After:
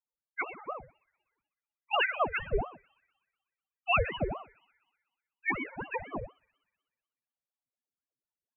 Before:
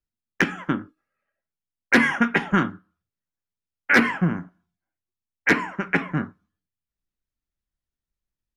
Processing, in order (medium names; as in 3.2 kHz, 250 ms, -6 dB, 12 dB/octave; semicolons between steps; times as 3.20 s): pitch bend over the whole clip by +6 st starting unshifted; high-pass 360 Hz 6 dB/octave; peaking EQ 710 Hz +11 dB 0.22 oct; in parallel at -0.5 dB: level held to a coarse grid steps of 12 dB; on the sum: loudest bins only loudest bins 1; on a send: feedback echo behind a high-pass 62 ms, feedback 76%, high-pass 1.8 kHz, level -20 dB; on the sum: ring modulator with a swept carrier 590 Hz, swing 70%, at 4.1 Hz; trim +4 dB